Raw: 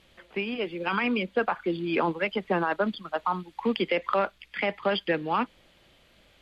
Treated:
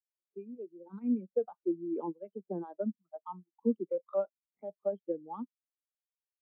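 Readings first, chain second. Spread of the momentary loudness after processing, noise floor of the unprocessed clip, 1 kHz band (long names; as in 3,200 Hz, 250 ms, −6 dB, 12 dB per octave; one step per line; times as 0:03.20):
14 LU, −61 dBFS, −18.0 dB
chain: running median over 25 samples
low-pass that shuts in the quiet parts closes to 1,600 Hz, open at −23.5 dBFS
every bin expanded away from the loudest bin 2.5 to 1
level −3.5 dB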